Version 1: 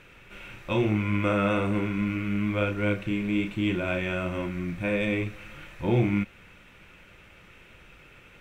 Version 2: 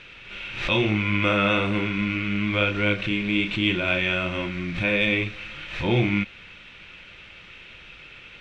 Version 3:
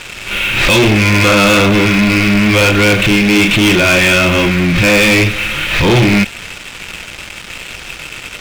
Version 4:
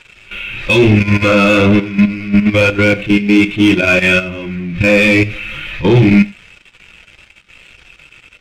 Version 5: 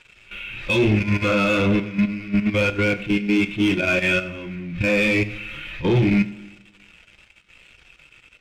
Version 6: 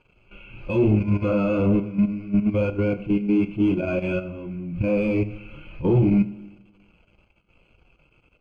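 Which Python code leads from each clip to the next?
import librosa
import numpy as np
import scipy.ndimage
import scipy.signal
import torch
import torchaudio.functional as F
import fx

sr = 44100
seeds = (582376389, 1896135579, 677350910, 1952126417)

y1 = scipy.signal.sosfilt(scipy.signal.butter(2, 5600.0, 'lowpass', fs=sr, output='sos'), x)
y1 = fx.peak_eq(y1, sr, hz=3600.0, db=12.5, octaves=1.7)
y1 = fx.pre_swell(y1, sr, db_per_s=82.0)
y1 = y1 * 10.0 ** (1.0 / 20.0)
y2 = fx.leveller(y1, sr, passes=5)
y2 = y2 * 10.0 ** (2.0 / 20.0)
y3 = fx.level_steps(y2, sr, step_db=10)
y3 = y3 + 10.0 ** (-15.5 / 20.0) * np.pad(y3, (int(93 * sr / 1000.0), 0))[:len(y3)]
y3 = fx.spectral_expand(y3, sr, expansion=1.5)
y3 = y3 * 10.0 ** (4.0 / 20.0)
y4 = fx.rev_plate(y3, sr, seeds[0], rt60_s=1.3, hf_ratio=0.75, predelay_ms=0, drr_db=16.0)
y4 = y4 * 10.0 ** (-9.0 / 20.0)
y5 = np.convolve(y4, np.full(24, 1.0 / 24))[:len(y4)]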